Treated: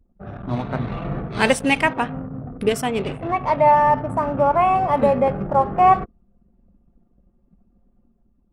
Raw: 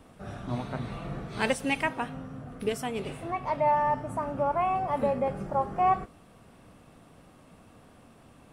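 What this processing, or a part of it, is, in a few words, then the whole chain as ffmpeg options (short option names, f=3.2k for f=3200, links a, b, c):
voice memo with heavy noise removal: -af "anlmdn=0.251,dynaudnorm=f=160:g=7:m=5dB,volume=5dB"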